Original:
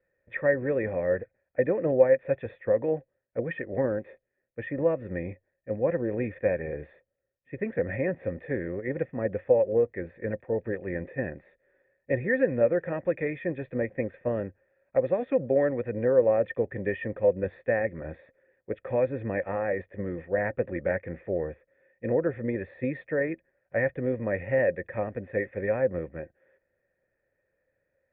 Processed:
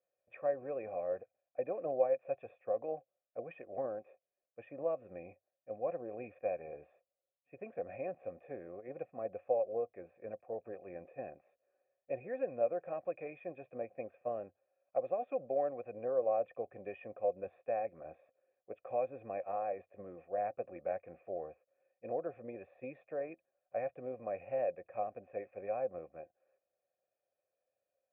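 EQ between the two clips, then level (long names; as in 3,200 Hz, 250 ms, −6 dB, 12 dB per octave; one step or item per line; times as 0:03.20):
formant filter a
low-shelf EQ 210 Hz +10 dB
0.0 dB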